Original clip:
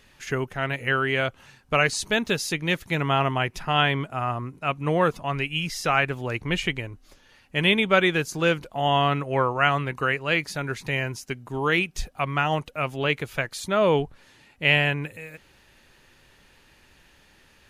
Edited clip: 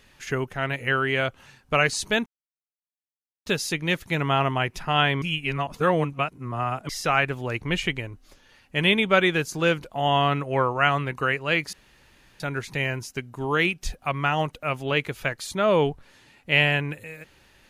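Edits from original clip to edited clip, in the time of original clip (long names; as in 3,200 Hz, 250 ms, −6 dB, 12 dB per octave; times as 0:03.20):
0:02.26: splice in silence 1.20 s
0:04.02–0:05.69: reverse
0:10.53: splice in room tone 0.67 s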